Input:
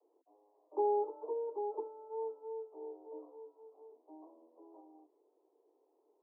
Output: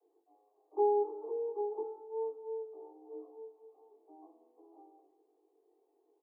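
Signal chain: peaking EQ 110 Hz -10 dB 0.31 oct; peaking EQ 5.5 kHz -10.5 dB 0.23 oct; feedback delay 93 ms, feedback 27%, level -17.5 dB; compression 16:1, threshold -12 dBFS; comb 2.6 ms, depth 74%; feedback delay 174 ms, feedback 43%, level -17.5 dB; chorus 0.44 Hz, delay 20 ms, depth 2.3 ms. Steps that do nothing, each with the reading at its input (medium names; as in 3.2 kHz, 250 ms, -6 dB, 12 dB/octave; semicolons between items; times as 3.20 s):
peaking EQ 110 Hz: input has nothing below 290 Hz; peaking EQ 5.5 kHz: input has nothing above 960 Hz; compression, threshold -12 dBFS: peak at its input -23.0 dBFS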